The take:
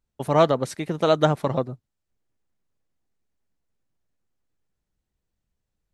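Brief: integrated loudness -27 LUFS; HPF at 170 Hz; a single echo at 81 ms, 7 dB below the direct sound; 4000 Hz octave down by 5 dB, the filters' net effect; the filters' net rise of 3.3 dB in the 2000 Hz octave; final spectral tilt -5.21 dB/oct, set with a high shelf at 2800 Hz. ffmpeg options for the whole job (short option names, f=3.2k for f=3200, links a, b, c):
-af "highpass=170,equalizer=f=2k:t=o:g=7.5,highshelf=f=2.8k:g=-4,equalizer=f=4k:t=o:g=-6,aecho=1:1:81:0.447,volume=-5dB"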